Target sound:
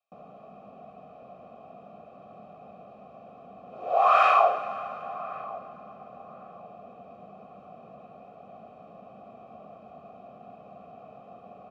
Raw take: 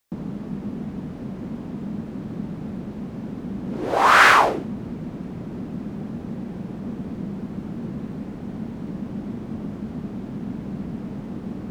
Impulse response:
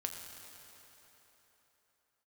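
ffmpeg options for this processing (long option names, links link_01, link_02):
-filter_complex "[0:a]asplit=3[link_01][link_02][link_03];[link_01]bandpass=frequency=730:width_type=q:width=8,volume=0dB[link_04];[link_02]bandpass=frequency=1090:width_type=q:width=8,volume=-6dB[link_05];[link_03]bandpass=frequency=2440:width_type=q:width=8,volume=-9dB[link_06];[link_04][link_05][link_06]amix=inputs=3:normalize=0,aecho=1:1:1.6:0.62,asplit=2[link_07][link_08];[link_08]adelay=1101,lowpass=frequency=820:poles=1,volume=-16dB,asplit=2[link_09][link_10];[link_10]adelay=1101,lowpass=frequency=820:poles=1,volume=0.39,asplit=2[link_11][link_12];[link_12]adelay=1101,lowpass=frequency=820:poles=1,volume=0.39[link_13];[link_07][link_09][link_11][link_13]amix=inputs=4:normalize=0,asplit=2[link_14][link_15];[1:a]atrim=start_sample=2205[link_16];[link_15][link_16]afir=irnorm=-1:irlink=0,volume=-3dB[link_17];[link_14][link_17]amix=inputs=2:normalize=0,volume=-2dB"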